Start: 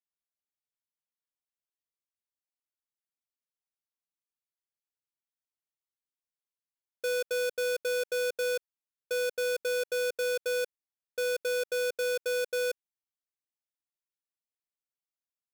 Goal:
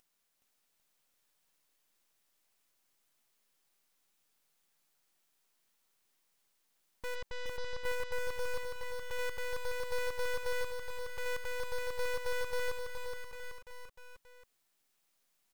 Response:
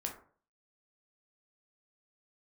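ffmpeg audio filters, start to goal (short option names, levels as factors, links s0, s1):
-filter_complex "[0:a]agate=range=0.0224:threshold=0.0501:ratio=3:detection=peak,acrossover=split=110[s0][s1];[s1]acompressor=mode=upward:threshold=0.00631:ratio=2.5[s2];[s0][s2]amix=inputs=2:normalize=0,alimiter=level_in=5.96:limit=0.0631:level=0:latency=1,volume=0.168,aeval=exprs='(tanh(158*val(0)+0.3)-tanh(0.3))/158':c=same,asplit=3[s3][s4][s5];[s3]afade=t=out:st=7.14:d=0.02[s6];[s4]adynamicsmooth=sensitivity=3:basefreq=1100,afade=t=in:st=7.14:d=0.02,afade=t=out:st=7.84:d=0.02[s7];[s5]afade=t=in:st=7.84:d=0.02[s8];[s6][s7][s8]amix=inputs=3:normalize=0,aeval=exprs='0.0075*(cos(1*acos(clip(val(0)/0.0075,-1,1)))-cos(1*PI/2))+0.000668*(cos(7*acos(clip(val(0)/0.0075,-1,1)))-cos(7*PI/2))+0.00299*(cos(8*acos(clip(val(0)/0.0075,-1,1)))-cos(8*PI/2))':c=same,asplit=2[s9][s10];[s10]aecho=0:1:420|798|1138|1444|1720:0.631|0.398|0.251|0.158|0.1[s11];[s9][s11]amix=inputs=2:normalize=0,volume=2.66"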